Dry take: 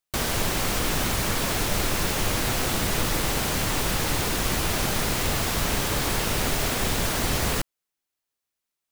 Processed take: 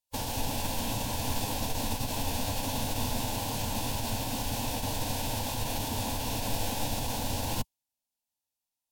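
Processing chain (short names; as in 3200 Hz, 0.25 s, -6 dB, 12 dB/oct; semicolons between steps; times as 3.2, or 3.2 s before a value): tracing distortion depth 0.15 ms; fixed phaser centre 330 Hz, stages 8; formant-preserving pitch shift -5 st; gain -2.5 dB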